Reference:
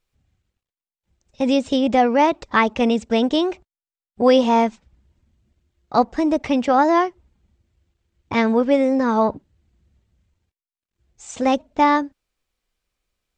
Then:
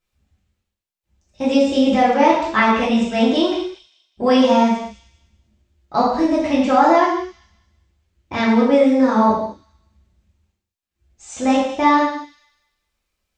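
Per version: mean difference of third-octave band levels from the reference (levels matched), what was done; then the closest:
6.0 dB: on a send: delay with a high-pass on its return 198 ms, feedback 31%, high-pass 3,700 Hz, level −11 dB
on the sum: reverb whose tail is shaped and stops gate 270 ms falling, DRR −7 dB
level −5 dB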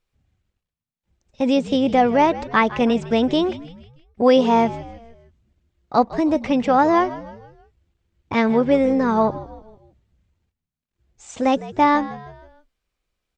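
4.0 dB: high-shelf EQ 5,500 Hz −6 dB
echo with shifted repeats 157 ms, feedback 47%, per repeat −76 Hz, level −16 dB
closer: second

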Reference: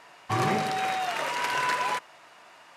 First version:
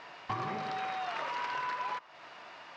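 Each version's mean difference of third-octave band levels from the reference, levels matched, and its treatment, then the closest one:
6.5 dB: low-pass filter 5,300 Hz 24 dB per octave
dynamic equaliser 1,100 Hz, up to +6 dB, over −40 dBFS, Q 2
downward compressor 6 to 1, threshold −37 dBFS, peak gain reduction 16 dB
level +2.5 dB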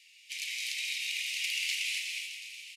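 20.5 dB: Butterworth high-pass 2,200 Hz 72 dB per octave
echo with shifted repeats 366 ms, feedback 52%, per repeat +31 Hz, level −10 dB
reverb whose tail is shaped and stops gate 310 ms rising, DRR 0.5 dB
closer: first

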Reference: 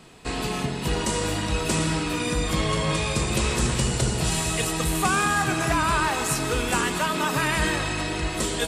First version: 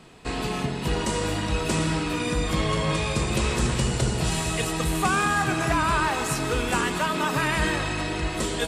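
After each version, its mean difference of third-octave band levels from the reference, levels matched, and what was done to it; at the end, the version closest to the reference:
1.0 dB: high-shelf EQ 5,100 Hz −5.5 dB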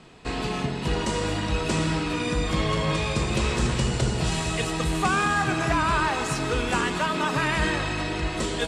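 2.5 dB: high-frequency loss of the air 72 metres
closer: first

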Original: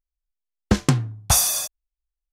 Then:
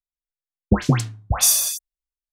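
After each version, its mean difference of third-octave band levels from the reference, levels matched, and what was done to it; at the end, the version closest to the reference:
8.5 dB: all-pass dispersion highs, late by 115 ms, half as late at 1,500 Hz
multiband upward and downward expander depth 40%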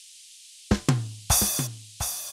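5.0 dB: noise in a band 2,700–10,000 Hz −45 dBFS
on a send: single-tap delay 704 ms −8.5 dB
on the sum: level −4 dB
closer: second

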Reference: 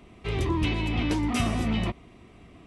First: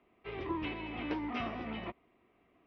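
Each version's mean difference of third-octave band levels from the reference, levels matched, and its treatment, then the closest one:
6.0 dB: elliptic low-pass filter 5,500 Hz, stop band 40 dB
three-way crossover with the lows and the highs turned down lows −14 dB, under 270 Hz, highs −21 dB, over 2,900 Hz
expander for the loud parts 1.5 to 1, over −46 dBFS
level −4 dB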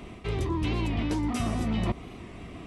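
4.0 dB: dynamic equaliser 2,600 Hz, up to −5 dB, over −45 dBFS, Q 1.2
reversed playback
downward compressor 12 to 1, threshold −33 dBFS, peak gain reduction 13.5 dB
reversed playback
wow of a warped record 45 rpm, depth 100 cents
level +8.5 dB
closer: second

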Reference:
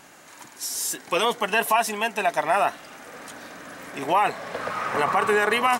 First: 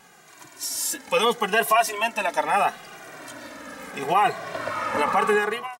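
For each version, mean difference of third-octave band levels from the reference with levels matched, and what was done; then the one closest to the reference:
3.0 dB: fade-out on the ending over 0.58 s
automatic gain control gain up to 4 dB
barber-pole flanger 2 ms −0.75 Hz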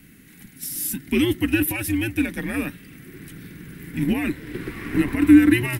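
10.5 dB: drawn EQ curve 170 Hz 0 dB, 410 Hz +8 dB, 700 Hz −24 dB, 1,200 Hz −23 dB, 2,100 Hz −3 dB, 6,900 Hz −15 dB, 12,000 Hz +3 dB
in parallel at −10 dB: dead-zone distortion −37.5 dBFS
on the sum: frequency shifter −120 Hz
level +3 dB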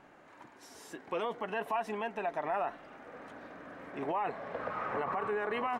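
7.5 dB: spectral tilt −3 dB per octave
brickwall limiter −17 dBFS, peak gain reduction 8.5 dB
bass and treble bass −9 dB, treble −13 dB
level −7.5 dB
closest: first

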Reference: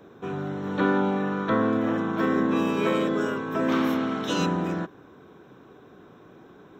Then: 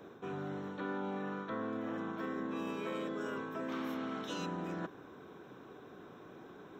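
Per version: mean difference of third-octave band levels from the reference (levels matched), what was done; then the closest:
4.5 dB: low-shelf EQ 180 Hz −5.5 dB
reversed playback
downward compressor 4 to 1, threshold −37 dBFS, peak gain reduction 15 dB
reversed playback
level −1.5 dB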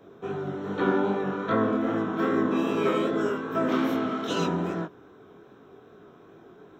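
1.5 dB: hollow resonant body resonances 410/680/1,300/3,200 Hz, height 6 dB
chorus effect 2.5 Hz, delay 18 ms, depth 6 ms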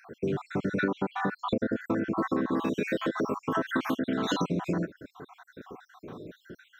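8.5 dB: time-frequency cells dropped at random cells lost 60%
downward compressor 6 to 1, threshold −34 dBFS, peak gain reduction 14.5 dB
level +8.5 dB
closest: second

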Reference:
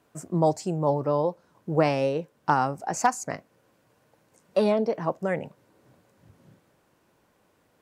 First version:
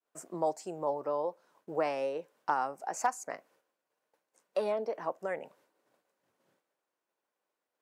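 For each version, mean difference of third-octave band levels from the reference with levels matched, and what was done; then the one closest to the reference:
4.0 dB: high-pass filter 440 Hz 12 dB per octave
downward expander −57 dBFS
dynamic equaliser 4,200 Hz, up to −6 dB, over −47 dBFS, Q 0.9
in parallel at −2.5 dB: downward compressor, threshold −33 dBFS, peak gain reduction 15 dB
on the sum: level −8 dB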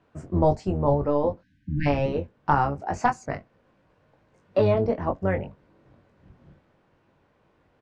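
5.0 dB: sub-octave generator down 1 octave, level −1 dB
time-frequency box erased 0:01.41–0:01.86, 320–1,500 Hz
low-pass filter 3,200 Hz 12 dB per octave
double-tracking delay 21 ms −6 dB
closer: first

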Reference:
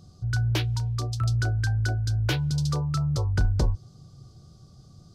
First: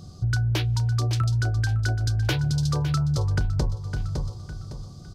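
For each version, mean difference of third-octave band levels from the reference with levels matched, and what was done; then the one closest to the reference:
4.5 dB: on a send: repeating echo 558 ms, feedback 34%, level −13.5 dB
on the sum: downward compressor, threshold −29 dBFS, peak gain reduction 11.5 dB
level +8 dB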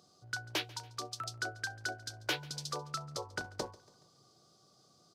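9.5 dB: high-pass filter 430 Hz 12 dB per octave
on a send: repeating echo 141 ms, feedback 51%, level −22 dB
on the sum: level −3.5 dB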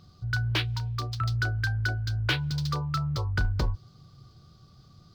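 2.5 dB: running median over 5 samples
flat-topped bell 2,200 Hz +8.5 dB 2.5 octaves
level −4 dB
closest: third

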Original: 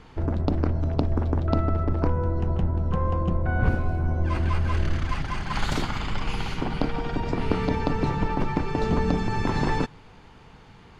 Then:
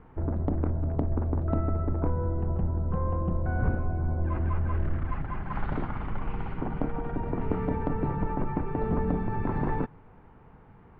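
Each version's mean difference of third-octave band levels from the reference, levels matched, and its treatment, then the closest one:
5.0 dB: Bessel low-pass filter 1,300 Hz, order 4
in parallel at −4.5 dB: soft clipping −17.5 dBFS, distortion −16 dB
on the sum: level −7 dB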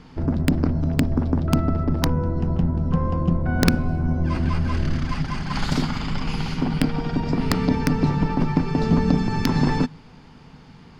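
3.5 dB: wrap-around overflow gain 10.5 dB
thirty-one-band graphic EQ 160 Hz +11 dB, 250 Hz +10 dB, 5,000 Hz +8 dB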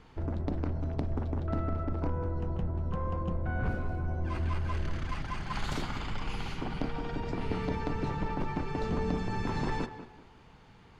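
1.0 dB: soft clipping −14.5 dBFS, distortion −20 dB
tape delay 191 ms, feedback 34%, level −9 dB, low-pass 1,900 Hz
level −7 dB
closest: third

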